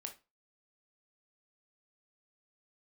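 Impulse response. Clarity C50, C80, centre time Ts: 12.0 dB, 20.5 dB, 11 ms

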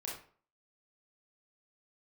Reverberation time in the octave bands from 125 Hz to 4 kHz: 0.45 s, 0.45 s, 0.45 s, 0.45 s, 0.40 s, 0.30 s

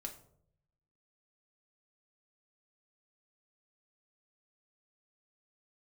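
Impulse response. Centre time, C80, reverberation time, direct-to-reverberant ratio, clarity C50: 13 ms, 15.0 dB, 0.70 s, 2.0 dB, 11.0 dB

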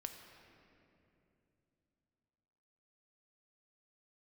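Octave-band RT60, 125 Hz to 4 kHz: 4.0 s, 3.7 s, 3.2 s, 2.5 s, 2.4 s, 1.8 s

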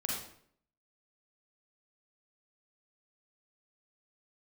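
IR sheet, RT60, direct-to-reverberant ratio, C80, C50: 0.60 s, -3.5 dB, 4.5 dB, 0.5 dB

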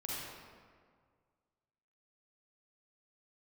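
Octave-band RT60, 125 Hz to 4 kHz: 2.2 s, 1.9 s, 1.9 s, 1.8 s, 1.5 s, 1.1 s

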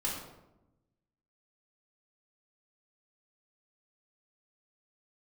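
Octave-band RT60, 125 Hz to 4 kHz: 1.5 s, 1.3 s, 1.0 s, 0.85 s, 0.65 s, 0.55 s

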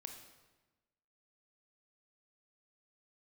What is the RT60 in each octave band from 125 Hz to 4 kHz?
1.3 s, 1.3 s, 1.2 s, 1.1 s, 1.1 s, 0.95 s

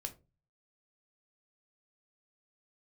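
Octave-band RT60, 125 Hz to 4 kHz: 0.65 s, 0.45 s, 0.35 s, 0.25 s, 0.20 s, 0.15 s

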